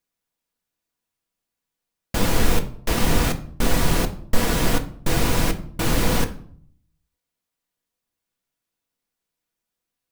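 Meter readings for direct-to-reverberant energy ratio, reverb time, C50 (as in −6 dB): 5.0 dB, 0.60 s, 14.0 dB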